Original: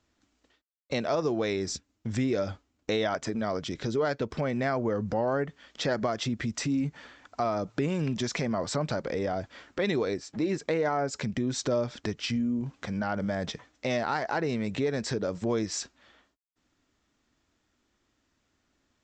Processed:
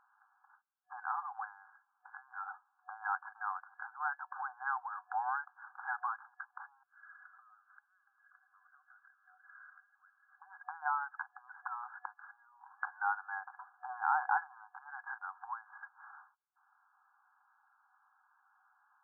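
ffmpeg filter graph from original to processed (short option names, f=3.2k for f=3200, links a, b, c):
-filter_complex "[0:a]asettb=1/sr,asplit=3[a][b][c];[a]atrim=end=6.834[d];[b]atrim=start=6.83:end=10.42,asetpts=PTS-STARTPTS,afade=t=in:d=0.004:c=qsin,afade=t=out:st=3.586:d=0.004:c=qsin,aeval=exprs='val(0)+0.5*0.0211*sgn(val(0))':c=same,acompressor=threshold=-34dB:ratio=10:attack=3.2:release=140:knee=1:detection=peak,asplit=3[e][f][g];[e]bandpass=f=270:t=q:w=8,volume=0dB[h];[f]bandpass=f=2.29k:t=q:w=8,volume=-6dB[i];[g]bandpass=f=3.01k:t=q:w=8,volume=-9dB[j];[h][i][j]amix=inputs=3:normalize=0[k];[c]atrim=start=10.416[l];[d][k]acrossfade=d=0.004:c1=hsin:c2=qsin[m];[m][l]acrossfade=d=0.004:c1=qsin:c2=hsin,acompressor=threshold=-42dB:ratio=2.5,afftfilt=real='re*between(b*sr/4096,740,1700)':imag='im*between(b*sr/4096,740,1700)':win_size=4096:overlap=0.75,volume=11.5dB"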